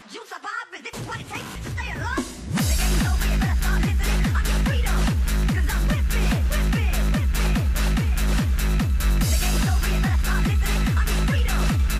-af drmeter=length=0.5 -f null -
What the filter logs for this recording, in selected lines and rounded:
Channel 1: DR: 5.9
Overall DR: 5.9